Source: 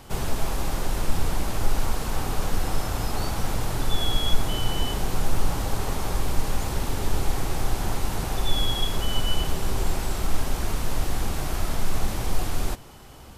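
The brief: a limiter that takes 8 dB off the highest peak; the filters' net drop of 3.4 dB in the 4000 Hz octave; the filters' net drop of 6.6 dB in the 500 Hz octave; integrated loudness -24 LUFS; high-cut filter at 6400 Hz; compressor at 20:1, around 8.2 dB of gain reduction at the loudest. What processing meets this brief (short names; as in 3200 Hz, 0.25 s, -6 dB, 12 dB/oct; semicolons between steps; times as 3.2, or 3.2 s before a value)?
LPF 6400 Hz; bell 500 Hz -9 dB; bell 4000 Hz -4 dB; compressor 20:1, threshold -19 dBFS; gain +12 dB; limiter -9.5 dBFS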